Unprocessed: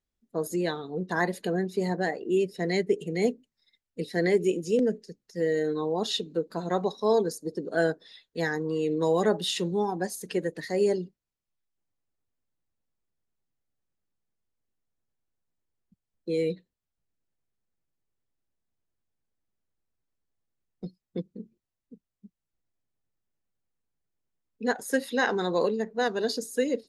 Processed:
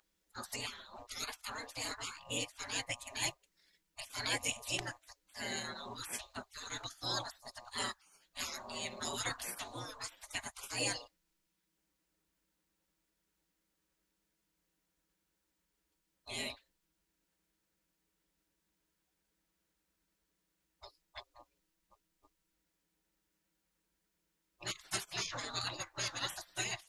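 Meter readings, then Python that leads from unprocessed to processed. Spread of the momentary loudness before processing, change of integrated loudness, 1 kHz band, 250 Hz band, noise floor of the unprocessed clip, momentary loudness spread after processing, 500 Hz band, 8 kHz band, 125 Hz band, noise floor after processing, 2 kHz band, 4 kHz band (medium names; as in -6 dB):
14 LU, -11.5 dB, -11.0 dB, -21.5 dB, under -85 dBFS, 16 LU, -23.5 dB, +2.0 dB, -14.5 dB, -84 dBFS, -8.0 dB, -2.0 dB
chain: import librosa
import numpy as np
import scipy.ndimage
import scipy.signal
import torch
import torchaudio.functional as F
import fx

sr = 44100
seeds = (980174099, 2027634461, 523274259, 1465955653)

y = fx.dmg_buzz(x, sr, base_hz=120.0, harmonics=10, level_db=-57.0, tilt_db=-5, odd_only=False)
y = fx.spec_gate(y, sr, threshold_db=-30, keep='weak')
y = F.gain(torch.from_numpy(y), 10.0).numpy()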